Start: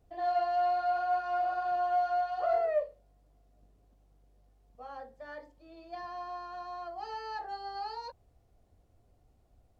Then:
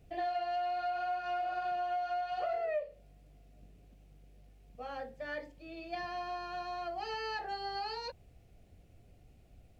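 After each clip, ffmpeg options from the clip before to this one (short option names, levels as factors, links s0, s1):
-af "acompressor=threshold=0.0158:ratio=6,equalizer=f=160:t=o:w=0.67:g=6,equalizer=f=1000:t=o:w=0.67:g=-9,equalizer=f=2500:t=o:w=0.67:g=9,volume=1.88"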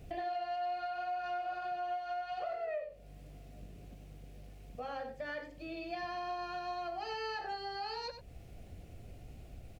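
-filter_complex "[0:a]acompressor=threshold=0.00251:ratio=2.5,asplit=2[s0][s1];[s1]aecho=0:1:93:0.316[s2];[s0][s2]amix=inputs=2:normalize=0,volume=2.82"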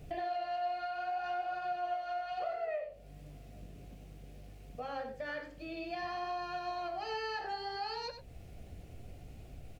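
-af "flanger=delay=6.7:depth=9.7:regen=75:speed=0.62:shape=sinusoidal,volume=1.88"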